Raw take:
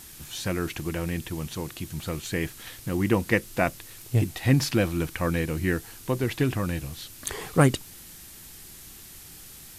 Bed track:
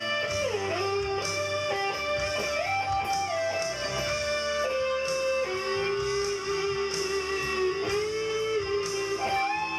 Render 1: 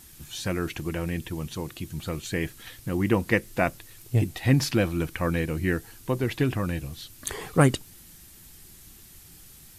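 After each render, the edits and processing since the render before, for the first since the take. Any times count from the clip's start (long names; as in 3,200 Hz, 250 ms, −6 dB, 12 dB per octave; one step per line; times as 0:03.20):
broadband denoise 6 dB, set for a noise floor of −46 dBFS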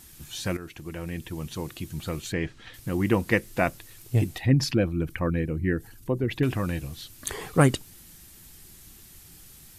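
0:00.57–0:01.62: fade in, from −12.5 dB
0:02.32–0:02.74: high-frequency loss of the air 130 metres
0:04.38–0:06.43: spectral envelope exaggerated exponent 1.5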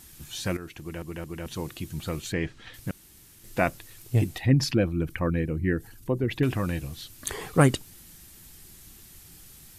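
0:00.80: stutter in place 0.22 s, 3 plays
0:02.91–0:03.44: fill with room tone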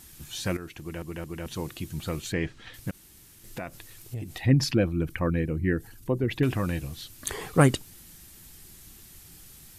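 0:02.90–0:04.40: downward compressor, threshold −32 dBFS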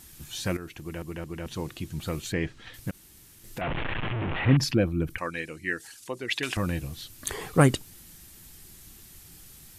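0:01.13–0:02.01: high-shelf EQ 10,000 Hz −7.5 dB
0:03.61–0:04.57: linear delta modulator 16 kbit/s, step −23 dBFS
0:05.18–0:06.57: meter weighting curve ITU-R 468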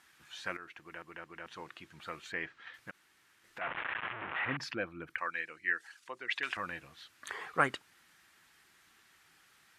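resonant band-pass 1,500 Hz, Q 1.5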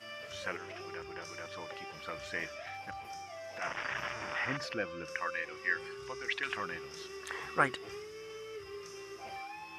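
mix in bed track −17 dB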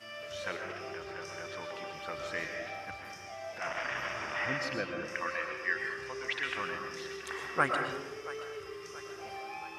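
echo with a time of its own for lows and highs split 430 Hz, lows 227 ms, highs 678 ms, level −16 dB
comb and all-pass reverb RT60 1.1 s, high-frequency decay 0.4×, pre-delay 80 ms, DRR 3 dB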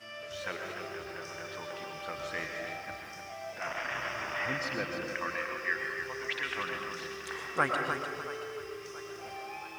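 feedback echo at a low word length 299 ms, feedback 35%, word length 9 bits, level −7 dB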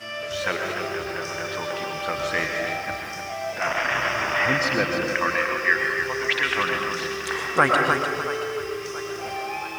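level +12 dB
brickwall limiter −3 dBFS, peak gain reduction 2.5 dB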